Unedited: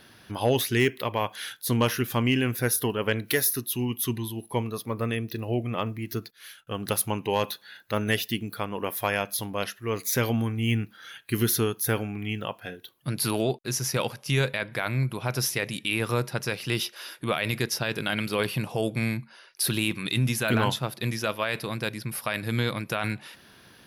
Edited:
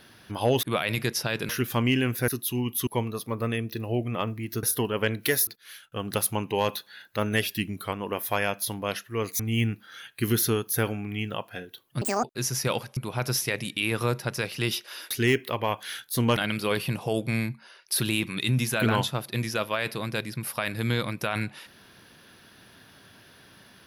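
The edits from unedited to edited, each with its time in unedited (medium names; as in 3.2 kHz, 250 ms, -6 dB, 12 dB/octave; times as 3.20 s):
0.63–1.89 s: swap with 17.19–18.05 s
2.68–3.52 s: move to 6.22 s
4.11–4.46 s: delete
8.18–8.64 s: speed 93%
10.11–10.50 s: delete
13.12–13.53 s: speed 185%
14.26–15.05 s: delete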